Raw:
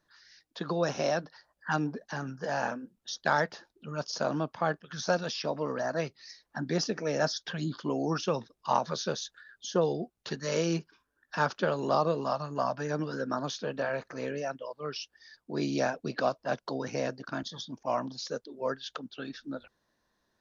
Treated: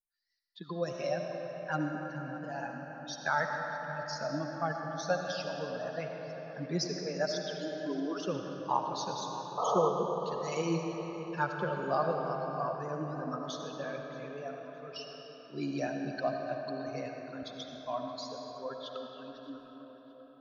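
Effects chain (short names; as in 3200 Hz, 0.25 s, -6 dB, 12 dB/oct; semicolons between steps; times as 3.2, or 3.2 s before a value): per-bin expansion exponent 2; 6.88–8.19 steep high-pass 260 Hz 72 dB/oct; 9.57–9.89 painted sound noise 420–1300 Hz -31 dBFS; tape echo 0.621 s, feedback 59%, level -14.5 dB, low-pass 2500 Hz; digital reverb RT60 4.7 s, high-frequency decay 0.6×, pre-delay 35 ms, DRR 2 dB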